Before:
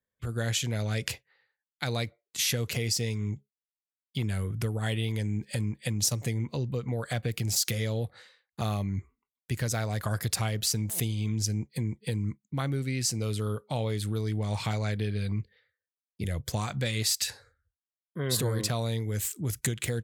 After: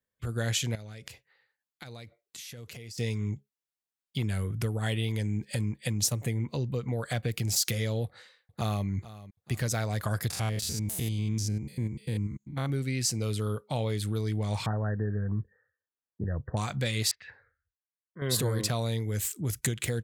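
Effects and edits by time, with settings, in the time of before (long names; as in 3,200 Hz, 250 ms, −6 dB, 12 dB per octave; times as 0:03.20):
0:00.75–0:02.98: downward compressor 8 to 1, threshold −41 dBFS
0:06.07–0:06.48: parametric band 5,200 Hz −11 dB 0.76 octaves
0:08.05–0:08.86: delay throw 440 ms, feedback 45%, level −16.5 dB
0:10.30–0:12.70: spectrum averaged block by block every 100 ms
0:14.66–0:16.57: linear-phase brick-wall low-pass 1,900 Hz
0:17.11–0:18.22: transistor ladder low-pass 2,200 Hz, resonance 50%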